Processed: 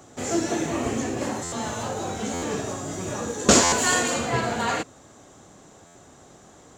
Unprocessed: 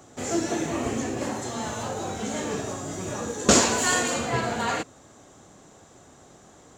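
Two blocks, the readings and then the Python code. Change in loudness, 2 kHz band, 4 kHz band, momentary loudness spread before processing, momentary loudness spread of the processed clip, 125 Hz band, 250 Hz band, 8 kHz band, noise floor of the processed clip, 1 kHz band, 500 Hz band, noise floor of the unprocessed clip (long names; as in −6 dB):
+1.5 dB, +1.5 dB, +1.5 dB, 13 LU, 13 LU, +1.5 dB, +1.5 dB, +2.0 dB, −51 dBFS, +2.0 dB, +1.5 dB, −52 dBFS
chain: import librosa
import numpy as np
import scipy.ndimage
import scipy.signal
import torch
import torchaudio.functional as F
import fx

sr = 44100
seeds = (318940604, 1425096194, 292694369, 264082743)

y = fx.buffer_glitch(x, sr, at_s=(1.43, 2.33, 3.63, 5.86), block=512, repeats=7)
y = y * 10.0 ** (1.5 / 20.0)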